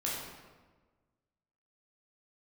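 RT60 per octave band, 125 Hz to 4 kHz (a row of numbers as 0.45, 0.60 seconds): 1.7, 1.6, 1.4, 1.3, 1.1, 0.90 seconds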